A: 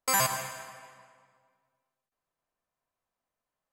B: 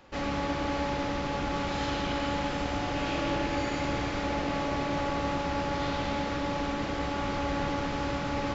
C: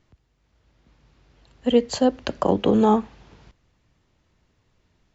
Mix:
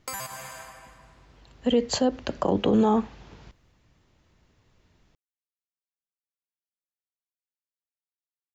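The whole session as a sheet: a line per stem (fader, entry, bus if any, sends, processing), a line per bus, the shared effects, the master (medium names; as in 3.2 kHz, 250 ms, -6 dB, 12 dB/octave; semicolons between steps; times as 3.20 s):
+1.0 dB, 0.00 s, no send, compression 4:1, threshold -35 dBFS, peak gain reduction 11.5 dB
mute
+2.0 dB, 0.00 s, no send, peak limiter -15 dBFS, peak gain reduction 8.5 dB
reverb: none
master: none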